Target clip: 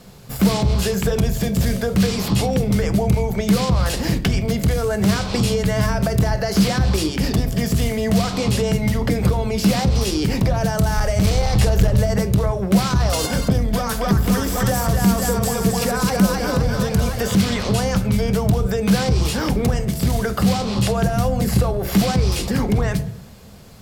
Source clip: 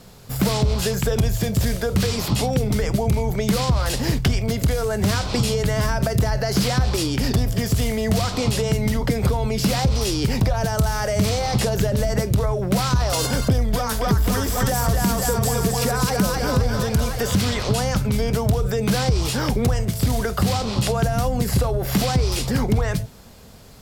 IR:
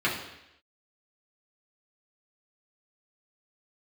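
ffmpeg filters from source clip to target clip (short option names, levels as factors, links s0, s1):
-filter_complex "[0:a]asplit=3[s0][s1][s2];[s0]afade=t=out:st=10.96:d=0.02[s3];[s1]asubboost=boost=6:cutoff=78,afade=t=in:st=10.96:d=0.02,afade=t=out:st=11.98:d=0.02[s4];[s2]afade=t=in:st=11.98:d=0.02[s5];[s3][s4][s5]amix=inputs=3:normalize=0,aeval=exprs='clip(val(0),-1,0.224)':c=same,asplit=2[s6][s7];[1:a]atrim=start_sample=2205,lowpass=7700,lowshelf=f=420:g=11.5[s8];[s7][s8]afir=irnorm=-1:irlink=0,volume=0.0708[s9];[s6][s9]amix=inputs=2:normalize=0"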